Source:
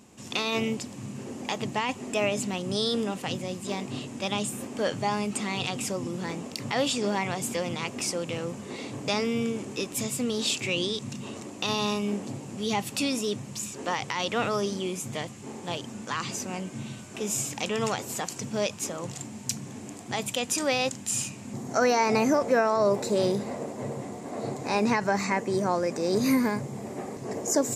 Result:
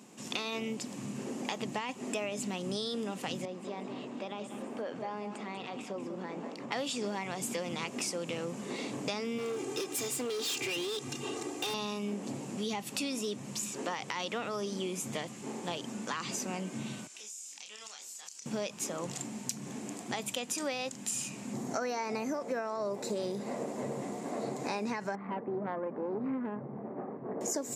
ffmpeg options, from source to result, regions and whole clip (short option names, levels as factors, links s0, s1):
-filter_complex "[0:a]asettb=1/sr,asplit=3[s0][s1][s2];[s0]atrim=end=3.454[s3];[s1]atrim=start=3.45:end=6.72,asetpts=PTS-STARTPTS,afade=t=in:d=0.004:c=qsin,afade=t=out:st=3.266:d=0.004:c=qsin,acompressor=threshold=0.0251:ratio=6:attack=3.2:release=140:knee=1:detection=peak,bandpass=f=660:t=q:w=0.52,aecho=1:1:192:0.355,atrim=end_sample=144207[s4];[s2]atrim=start=6.716[s5];[s3][s4]acrossfade=d=0.004:c1=hsin:c2=qsin[s6];[s6][s5]acrossfade=d=0.004:c1=qsin:c2=hsin,asettb=1/sr,asplit=3[s7][s8][s9];[s7]atrim=end=9.384[s10];[s8]atrim=start=9.38:end=11.74,asetpts=PTS-STARTPTS,afade=t=in:d=0.004:c=qsin,afade=t=out:st=2.356:d=0.004:c=qsin,aecho=1:1:2.5:1,atrim=end_sample=104076,volume=23.7,asoftclip=hard,volume=0.0422[s11];[s9]atrim=start=11.736[s12];[s10][s11]acrossfade=d=0.004:c1=hsin:c2=qsin[s13];[s13][s12]acrossfade=d=0.004:c1=qsin:c2=hsin,asettb=1/sr,asplit=3[s14][s15][s16];[s14]atrim=end=17.074[s17];[s15]atrim=start=17.07:end=18.46,asetpts=PTS-STARTPTS,afade=t=in:d=0.004:c=qsin,afade=t=out:st=1.386:d=0.004:c=qsin,bandpass=f=6200:t=q:w=1.1,asplit=2[s18][s19];[s19]adelay=28,volume=0.562[s20];[s18][s20]amix=inputs=2:normalize=0,atrim=end_sample=61299,acompressor=threshold=0.00708:ratio=6:attack=3.2:release=140:knee=1:detection=peak[s21];[s16]atrim=start=18.456[s22];[s17][s21]acrossfade=d=0.004:c1=hsin:c2=qsin[s23];[s23][s22]acrossfade=d=0.004:c1=qsin:c2=hsin,asettb=1/sr,asplit=3[s24][s25][s26];[s24]atrim=end=25.154[s27];[s25]atrim=start=25.15:end=27.41,asetpts=PTS-STARTPTS,afade=t=in:d=0.004:c=qsin,afade=t=out:st=2.256:d=0.004:c=qsin,lowpass=f=1500:w=0.5412,lowpass=f=1500:w=1.3066,aeval=exprs='(tanh(8.91*val(0)+0.7)-tanh(0.7))/8.91':c=same[s28];[s26]atrim=start=27.406[s29];[s27][s28]acrossfade=d=0.004:c1=hsin:c2=qsin[s30];[s30][s29]acrossfade=d=0.004:c1=qsin:c2=hsin,highpass=f=150:w=0.5412,highpass=f=150:w=1.3066,acompressor=threshold=0.0251:ratio=6"